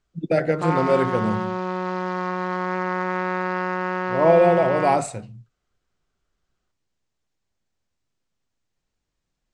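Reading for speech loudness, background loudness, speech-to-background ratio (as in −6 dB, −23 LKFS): −20.5 LKFS, −26.0 LKFS, 5.5 dB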